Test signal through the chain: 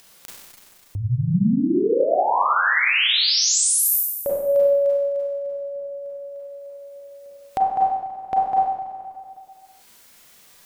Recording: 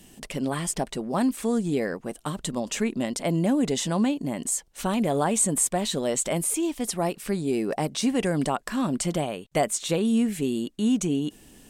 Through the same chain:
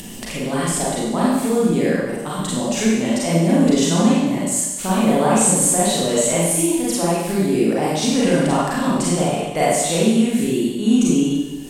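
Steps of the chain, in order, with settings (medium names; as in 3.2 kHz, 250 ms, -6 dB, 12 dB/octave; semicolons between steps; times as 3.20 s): Schroeder reverb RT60 1.1 s, combs from 32 ms, DRR -7.5 dB; upward compressor, threshold -24 dBFS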